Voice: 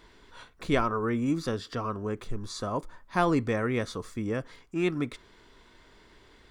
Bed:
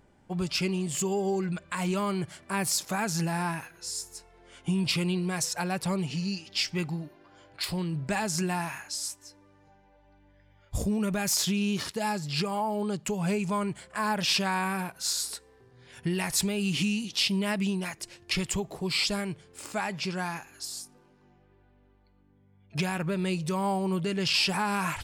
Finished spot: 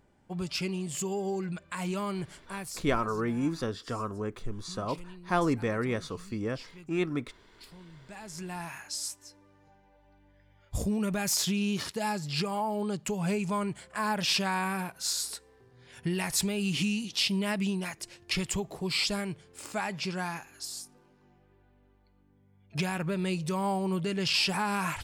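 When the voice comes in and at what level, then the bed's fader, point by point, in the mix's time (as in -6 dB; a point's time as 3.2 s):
2.15 s, -2.0 dB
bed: 2.35 s -4 dB
3.02 s -20 dB
7.99 s -20 dB
8.87 s -1.5 dB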